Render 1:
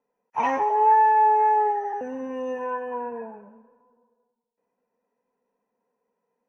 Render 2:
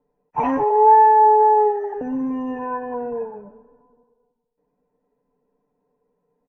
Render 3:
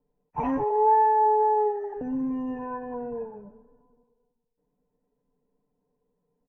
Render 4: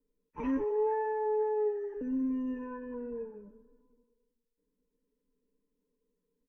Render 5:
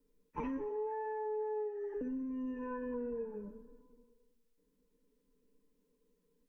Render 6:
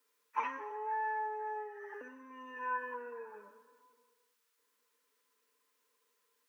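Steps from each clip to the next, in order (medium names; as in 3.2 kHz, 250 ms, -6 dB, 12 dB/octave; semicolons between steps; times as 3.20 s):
tilt EQ -4.5 dB/octave; comb 6.8 ms, depth 76%
bass shelf 210 Hz +12 dB; trim -9 dB
static phaser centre 310 Hz, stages 4; trim -2.5 dB
compression 10:1, threshold -41 dBFS, peak gain reduction 15 dB; reverberation RT60 0.50 s, pre-delay 6 ms, DRR 17 dB; trim +5 dB
resonant high-pass 1.2 kHz, resonance Q 1.6; trim +9 dB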